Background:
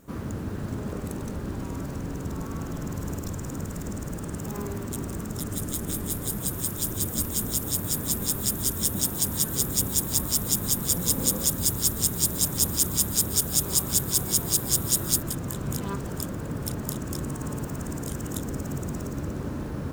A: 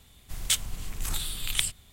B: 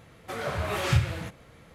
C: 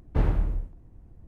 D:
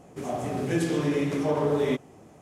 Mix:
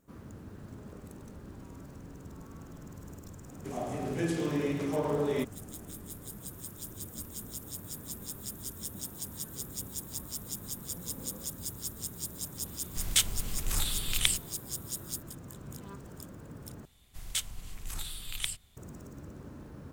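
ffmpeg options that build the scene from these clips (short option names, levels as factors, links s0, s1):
-filter_complex "[1:a]asplit=2[s0][s1];[0:a]volume=0.188,asplit=2[s2][s3];[s2]atrim=end=16.854[s4];[s1]atrim=end=1.92,asetpts=PTS-STARTPTS,volume=0.422[s5];[s3]atrim=start=18.766[s6];[4:a]atrim=end=2.41,asetpts=PTS-STARTPTS,volume=0.531,afade=t=in:d=0.004:c=hsin,afade=t=out:st=2.406:d=0.004:c=hsin,adelay=3480[s7];[s0]atrim=end=1.92,asetpts=PTS-STARTPTS,afade=t=in:d=0.004:c=hsin,afade=t=out:st=1.916:d=0.004:c=hsin,adelay=12660[s8];[s4][s5]acrossfade=d=0.004:c1=hsin:c2=hsin[s9];[s9][s6]acrossfade=d=0.004:c1=hsin:c2=hsin[s10];[s10][s7][s8]amix=inputs=3:normalize=0"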